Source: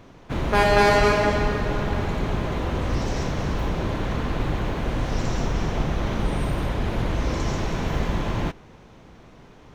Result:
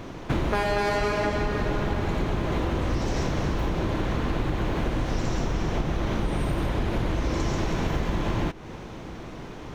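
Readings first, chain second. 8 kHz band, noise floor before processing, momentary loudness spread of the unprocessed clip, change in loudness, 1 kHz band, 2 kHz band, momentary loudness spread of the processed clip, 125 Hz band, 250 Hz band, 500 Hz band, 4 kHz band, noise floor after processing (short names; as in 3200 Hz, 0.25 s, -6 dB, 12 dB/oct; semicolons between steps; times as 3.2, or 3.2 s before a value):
-3.0 dB, -48 dBFS, 9 LU, -3.0 dB, -4.5 dB, -5.0 dB, 7 LU, -2.0 dB, -1.0 dB, -4.0 dB, -3.5 dB, -39 dBFS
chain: bell 330 Hz +5 dB 0.24 oct; compressor 6:1, threshold -32 dBFS, peak gain reduction 18.5 dB; gain +9 dB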